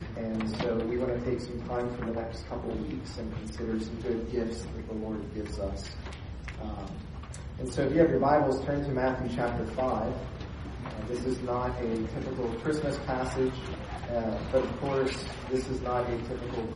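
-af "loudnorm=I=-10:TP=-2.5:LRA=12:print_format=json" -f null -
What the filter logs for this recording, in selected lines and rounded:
"input_i" : "-32.0",
"input_tp" : "-10.5",
"input_lra" : "6.1",
"input_thresh" : "-42.0",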